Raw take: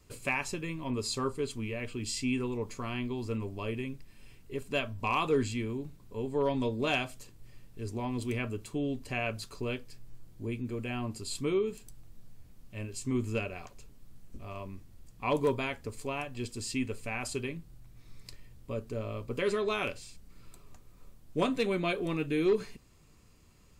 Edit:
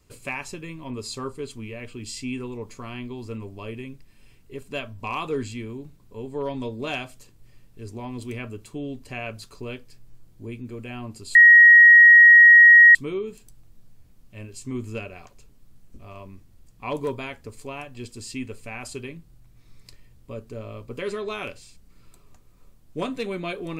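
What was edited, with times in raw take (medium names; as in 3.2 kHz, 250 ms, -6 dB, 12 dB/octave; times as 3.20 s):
11.35 s: add tone 1.89 kHz -7 dBFS 1.60 s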